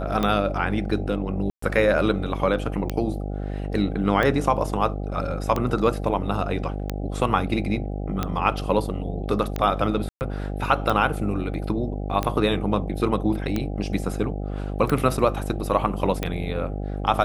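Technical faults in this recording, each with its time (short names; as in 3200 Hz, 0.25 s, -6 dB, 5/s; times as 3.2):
buzz 50 Hz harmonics 16 -29 dBFS
tick 45 rpm -11 dBFS
1.5–1.62 gap 0.124 s
10.09–10.21 gap 0.119 s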